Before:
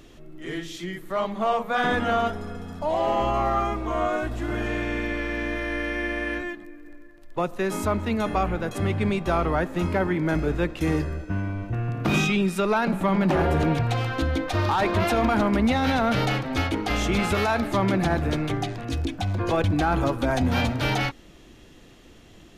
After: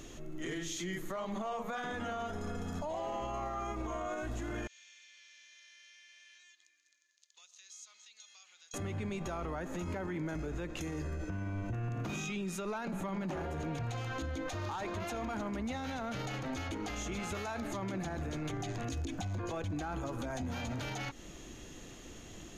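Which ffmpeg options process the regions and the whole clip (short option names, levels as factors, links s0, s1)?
-filter_complex "[0:a]asettb=1/sr,asplit=3[s0][s1][s2];[s0]atrim=end=4.674[s3];[s1]atrim=start=4.67:end=8.74,asetpts=PTS-STARTPTS,afade=t=in:d=0.004:c=qsin,afade=t=out:st=4.066:d=0.004:c=qsin,asuperpass=centerf=4900:order=4:qfactor=1.4,acompressor=threshold=0.001:ratio=3:attack=3.2:release=140:knee=1:detection=peak[s4];[s2]atrim=start=8.736[s5];[s3][s4]acrossfade=d=0.004:c1=hsin:c2=qsin[s6];[s6][s5]acrossfade=d=0.004:c1=qsin:c2=hsin,equalizer=f=6600:t=o:w=0.22:g=13.5,acompressor=threshold=0.0355:ratio=6,alimiter=level_in=2.11:limit=0.0631:level=0:latency=1:release=45,volume=0.473"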